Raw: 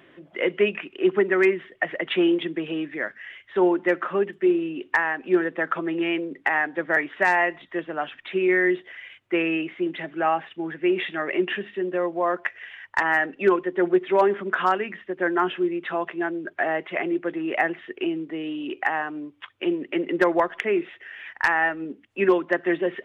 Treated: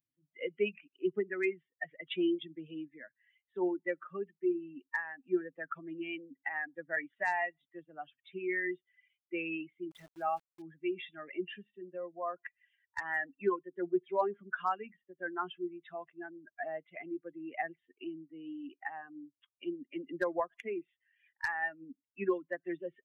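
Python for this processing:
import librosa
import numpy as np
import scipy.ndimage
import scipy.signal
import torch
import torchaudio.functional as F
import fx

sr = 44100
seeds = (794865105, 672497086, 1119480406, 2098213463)

y = fx.bin_expand(x, sr, power=2.0)
y = fx.sample_gate(y, sr, floor_db=-48.0, at=(9.91, 10.62))
y = F.gain(torch.from_numpy(y), -8.5).numpy()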